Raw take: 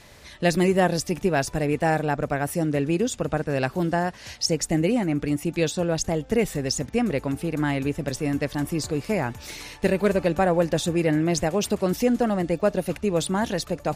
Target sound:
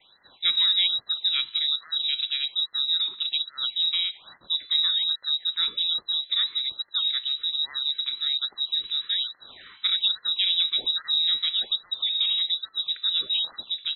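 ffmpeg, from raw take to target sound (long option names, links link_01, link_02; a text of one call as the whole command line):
ffmpeg -i in.wav -filter_complex "[0:a]bandreject=frequency=122.1:width_type=h:width=4,bandreject=frequency=244.2:width_type=h:width=4,bandreject=frequency=366.3:width_type=h:width=4,bandreject=frequency=488.4:width_type=h:width=4,bandreject=frequency=610.5:width_type=h:width=4,bandreject=frequency=732.6:width_type=h:width=4,bandreject=frequency=854.7:width_type=h:width=4,bandreject=frequency=976.8:width_type=h:width=4,bandreject=frequency=1098.9:width_type=h:width=4,bandreject=frequency=1221:width_type=h:width=4,bandreject=frequency=1343.1:width_type=h:width=4,bandreject=frequency=1465.2:width_type=h:width=4,bandreject=frequency=1587.3:width_type=h:width=4,bandreject=frequency=1709.4:width_type=h:width=4,bandreject=frequency=1831.5:width_type=h:width=4,bandreject=frequency=1953.6:width_type=h:width=4,bandreject=frequency=2075.7:width_type=h:width=4,bandreject=frequency=2197.8:width_type=h:width=4,bandreject=frequency=2319.9:width_type=h:width=4,bandreject=frequency=2442:width_type=h:width=4,bandreject=frequency=2564.1:width_type=h:width=4,bandreject=frequency=2686.2:width_type=h:width=4,bandreject=frequency=2808.3:width_type=h:width=4,bandreject=frequency=2930.4:width_type=h:width=4,bandreject=frequency=3052.5:width_type=h:width=4,bandreject=frequency=3174.6:width_type=h:width=4,bandreject=frequency=3296.7:width_type=h:width=4,bandreject=frequency=3418.8:width_type=h:width=4,bandreject=frequency=3540.9:width_type=h:width=4,bandreject=frequency=3663:width_type=h:width=4,bandreject=frequency=3785.1:width_type=h:width=4,bandreject=frequency=3907.2:width_type=h:width=4,bandreject=frequency=4029.3:width_type=h:width=4,bandreject=frequency=4151.4:width_type=h:width=4,bandreject=frequency=4273.5:width_type=h:width=4,bandreject=frequency=4395.6:width_type=h:width=4,bandreject=frequency=4517.7:width_type=h:width=4,adynamicequalizer=threshold=0.0126:dfrequency=150:dqfactor=0.95:tfrequency=150:tqfactor=0.95:attack=5:release=100:ratio=0.375:range=4:mode=boostabove:tftype=bell,asplit=3[link_01][link_02][link_03];[link_02]asetrate=35002,aresample=44100,atempo=1.25992,volume=-16dB[link_04];[link_03]asetrate=37084,aresample=44100,atempo=1.18921,volume=-16dB[link_05];[link_01][link_04][link_05]amix=inputs=3:normalize=0,lowpass=frequency=3400:width_type=q:width=0.5098,lowpass=frequency=3400:width_type=q:width=0.6013,lowpass=frequency=3400:width_type=q:width=0.9,lowpass=frequency=3400:width_type=q:width=2.563,afreqshift=-4000,afftfilt=real='re*(1-between(b*sr/1024,570*pow(2900/570,0.5+0.5*sin(2*PI*1.2*pts/sr))/1.41,570*pow(2900/570,0.5+0.5*sin(2*PI*1.2*pts/sr))*1.41))':imag='im*(1-between(b*sr/1024,570*pow(2900/570,0.5+0.5*sin(2*PI*1.2*pts/sr))/1.41,570*pow(2900/570,0.5+0.5*sin(2*PI*1.2*pts/sr))*1.41))':win_size=1024:overlap=0.75,volume=-6dB" out.wav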